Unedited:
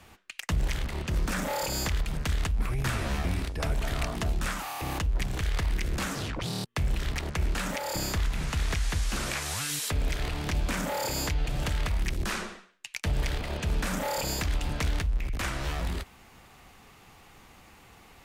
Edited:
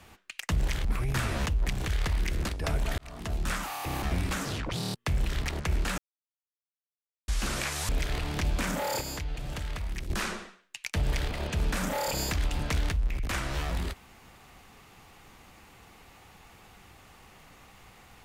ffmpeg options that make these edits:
ffmpeg -i in.wav -filter_complex "[0:a]asplit=12[link_01][link_02][link_03][link_04][link_05][link_06][link_07][link_08][link_09][link_10][link_11][link_12];[link_01]atrim=end=0.852[link_13];[link_02]atrim=start=2.548:end=3.162[link_14];[link_03]atrim=start=4.988:end=6.012[link_15];[link_04]atrim=start=3.438:end=3.94,asetpts=PTS-STARTPTS,afade=type=out:start_time=0.498:duration=0.004:curve=hsin[link_16];[link_05]atrim=start=3.94:end=4.992,asetpts=PTS-STARTPTS,afade=type=in:duration=0.51[link_17];[link_06]atrim=start=3.158:end=3.442[link_18];[link_07]atrim=start=6.008:end=7.68,asetpts=PTS-STARTPTS,afade=type=out:start_time=1.668:duration=0.004:curve=hsin[link_19];[link_08]atrim=start=7.68:end=8.98,asetpts=PTS-STARTPTS,volume=0[link_20];[link_09]atrim=start=8.98:end=9.592,asetpts=PTS-STARTPTS,afade=type=in:duration=0.004:curve=hsin[link_21];[link_10]atrim=start=9.988:end=11.112[link_22];[link_11]atrim=start=11.108:end=12.202,asetpts=PTS-STARTPTS,volume=-6dB[link_23];[link_12]atrim=start=12.198[link_24];[link_13][link_14]acrossfade=duration=0.004:curve1=hsin:curve2=hsin[link_25];[link_25][link_15]acrossfade=duration=0.004:curve1=hsin:curve2=hsin[link_26];[link_16][link_17]concat=n=2:v=0:a=1[link_27];[link_26][link_27]acrossfade=duration=0.004:curve1=hsin:curve2=hsin[link_28];[link_28][link_18]acrossfade=duration=0.004:curve1=hsin:curve2=hsin[link_29];[link_19][link_20][link_21]concat=n=3:v=0:a=1[link_30];[link_29][link_30]acrossfade=duration=0.004:curve1=hsin:curve2=hsin[link_31];[link_31][link_22]acrossfade=duration=0.004:curve1=hsin:curve2=hsin[link_32];[link_32][link_23]acrossfade=duration=0.004:curve1=hsin:curve2=hsin[link_33];[link_33][link_24]acrossfade=duration=0.004:curve1=hsin:curve2=hsin" out.wav

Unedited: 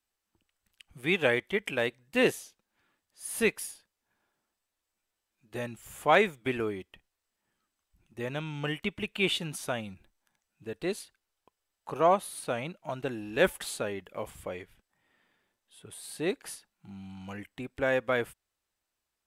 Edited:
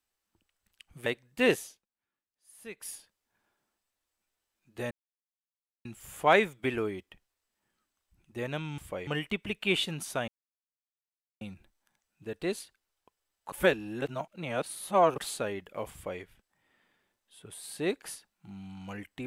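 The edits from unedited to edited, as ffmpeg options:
ffmpeg -i in.wav -filter_complex "[0:a]asplit=10[link_01][link_02][link_03][link_04][link_05][link_06][link_07][link_08][link_09][link_10];[link_01]atrim=end=1.062[link_11];[link_02]atrim=start=1.818:end=2.62,asetpts=PTS-STARTPTS,afade=type=out:start_time=0.602:duration=0.2:silence=0.125893[link_12];[link_03]atrim=start=2.62:end=3.5,asetpts=PTS-STARTPTS,volume=-18dB[link_13];[link_04]atrim=start=3.5:end=5.67,asetpts=PTS-STARTPTS,afade=type=in:duration=0.2:silence=0.125893,afade=type=out:start_time=2.166:duration=0.004:curve=hsin,apad=pad_dur=0.94[link_14];[link_05]atrim=start=5.67:end=8.602,asetpts=PTS-STARTPTS,afade=type=in:duration=0.004:curve=hsin[link_15];[link_06]atrim=start=14.318:end=14.612[link_16];[link_07]atrim=start=8.598:end=9.81,asetpts=PTS-STARTPTS,afade=type=out:start_time=1.208:duration=0.004:curve=hsin,apad=pad_dur=1.13[link_17];[link_08]atrim=start=9.81:end=11.922,asetpts=PTS-STARTPTS,afade=type=in:duration=0.004:curve=hsin[link_18];[link_09]atrim=start=11.918:end=13.582,asetpts=PTS-STARTPTS,areverse[link_19];[link_10]atrim=start=13.578[link_20];[link_12][link_13][link_14][link_15]concat=n=4:v=0:a=1[link_21];[link_11][link_21]acrossfade=duration=0.004:curve1=hsin:curve2=hsin[link_22];[link_22][link_16]acrossfade=duration=0.004:curve1=hsin:curve2=hsin[link_23];[link_17][link_18]concat=n=2:v=0:a=1[link_24];[link_23][link_24]acrossfade=duration=0.004:curve1=hsin:curve2=hsin[link_25];[link_25][link_19]acrossfade=duration=0.004:curve1=hsin:curve2=hsin[link_26];[link_26][link_20]acrossfade=duration=0.004:curve1=hsin:curve2=hsin" out.wav

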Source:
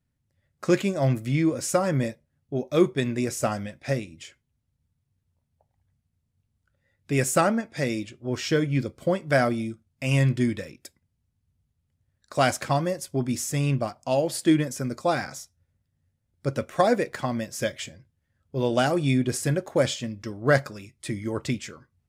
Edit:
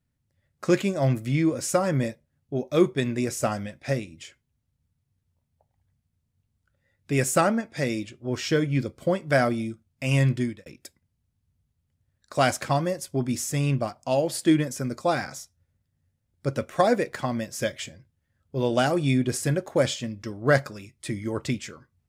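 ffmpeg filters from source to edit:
ffmpeg -i in.wav -filter_complex "[0:a]asplit=2[link_01][link_02];[link_01]atrim=end=10.66,asetpts=PTS-STARTPTS,afade=type=out:start_time=10.33:duration=0.33[link_03];[link_02]atrim=start=10.66,asetpts=PTS-STARTPTS,afade=type=in:duration=0.004:curve=hsin[link_04];[link_03][link_04]concat=n=2:v=0:a=1" out.wav

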